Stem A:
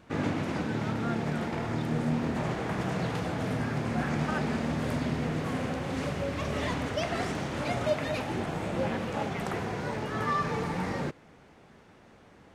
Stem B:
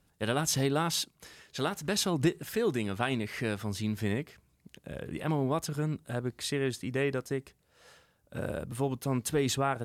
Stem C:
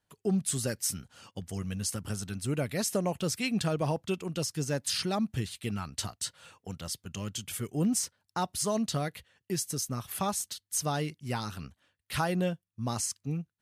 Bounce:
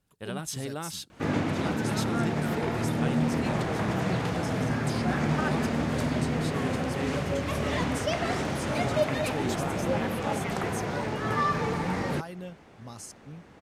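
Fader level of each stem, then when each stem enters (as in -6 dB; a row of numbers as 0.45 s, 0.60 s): +2.5 dB, -7.0 dB, -11.0 dB; 1.10 s, 0.00 s, 0.00 s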